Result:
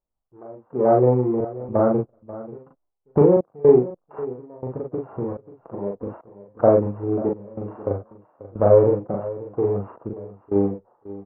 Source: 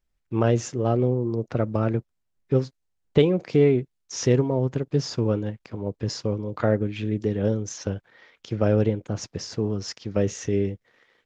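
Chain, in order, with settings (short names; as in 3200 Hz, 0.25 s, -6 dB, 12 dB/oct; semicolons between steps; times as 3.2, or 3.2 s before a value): sample sorter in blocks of 16 samples; gate -52 dBFS, range -8 dB; steep low-pass 1300 Hz 36 dB/oct; bell 710 Hz +15 dB 2.4 oct; 4.56–6.57 compressor 6:1, threshold -20 dBFS, peak gain reduction 10.5 dB; flange 0.3 Hz, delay 0.1 ms, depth 10 ms, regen -28%; step gate "xx...xxxxx..xx" 107 bpm -24 dB; doubler 40 ms -2 dB; echo 0.538 s -16.5 dB; gain -2 dB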